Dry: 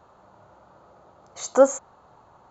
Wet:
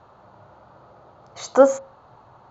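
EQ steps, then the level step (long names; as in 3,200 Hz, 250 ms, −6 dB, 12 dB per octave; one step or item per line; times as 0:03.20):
low-pass filter 5,600 Hz 24 dB per octave
parametric band 120 Hz +11 dB 0.24 octaves
mains-hum notches 60/120/180/240/300/360/420/480/540 Hz
+3.5 dB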